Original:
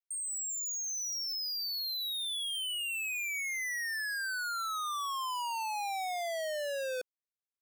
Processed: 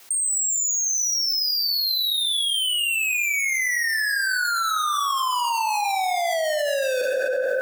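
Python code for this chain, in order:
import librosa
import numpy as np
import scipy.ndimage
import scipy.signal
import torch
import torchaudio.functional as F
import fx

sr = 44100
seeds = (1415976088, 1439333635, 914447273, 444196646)

y = scipy.signal.sosfilt(scipy.signal.butter(2, 200.0, 'highpass', fs=sr, output='sos'), x)
y = fx.rev_plate(y, sr, seeds[0], rt60_s=1.5, hf_ratio=0.5, predelay_ms=0, drr_db=5.0)
y = fx.env_flatten(y, sr, amount_pct=100)
y = y * 10.0 ** (7.5 / 20.0)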